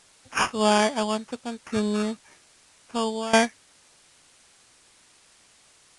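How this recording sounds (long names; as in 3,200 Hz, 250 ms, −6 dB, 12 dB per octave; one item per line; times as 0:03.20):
aliases and images of a low sample rate 4,000 Hz, jitter 0%
tremolo saw down 0.6 Hz, depth 85%
a quantiser's noise floor 10 bits, dither triangular
Ogg Vorbis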